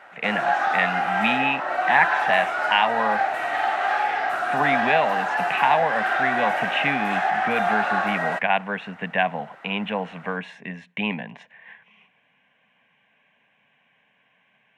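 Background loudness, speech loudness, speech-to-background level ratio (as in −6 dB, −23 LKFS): −23.5 LKFS, −25.0 LKFS, −1.5 dB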